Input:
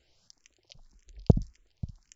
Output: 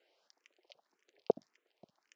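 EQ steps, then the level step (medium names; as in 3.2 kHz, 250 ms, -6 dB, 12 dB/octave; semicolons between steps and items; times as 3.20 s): high-pass 410 Hz 24 dB/octave; low-pass 2.3 kHz 12 dB/octave; peaking EQ 1.4 kHz -4.5 dB 2.8 oct; +4.5 dB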